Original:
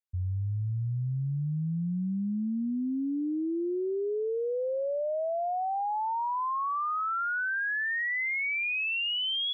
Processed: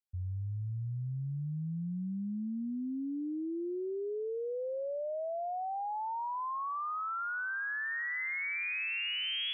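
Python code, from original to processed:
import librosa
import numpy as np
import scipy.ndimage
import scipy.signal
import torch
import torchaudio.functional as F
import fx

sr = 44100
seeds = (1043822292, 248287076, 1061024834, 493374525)

y = fx.echo_wet_highpass(x, sr, ms=206, feedback_pct=82, hz=2600.0, wet_db=-6.5)
y = F.gain(torch.from_numpy(y), -6.0).numpy()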